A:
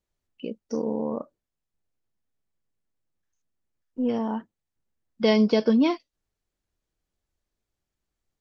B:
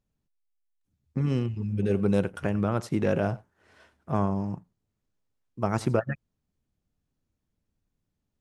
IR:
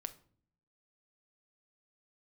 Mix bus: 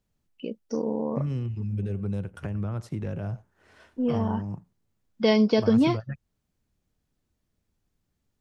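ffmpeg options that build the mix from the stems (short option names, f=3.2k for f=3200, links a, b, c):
-filter_complex "[0:a]volume=-0.5dB[a];[1:a]acrossover=split=140[b][c];[c]acompressor=threshold=-38dB:ratio=6[d];[b][d]amix=inputs=2:normalize=0,volume=2dB[e];[a][e]amix=inputs=2:normalize=0"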